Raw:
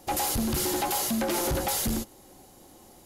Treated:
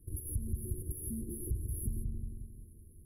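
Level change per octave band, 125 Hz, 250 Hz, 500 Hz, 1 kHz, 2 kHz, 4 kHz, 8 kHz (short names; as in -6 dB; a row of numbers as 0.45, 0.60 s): -1.0 dB, -14.0 dB, -20.5 dB, under -40 dB, under -40 dB, under -40 dB, -14.5 dB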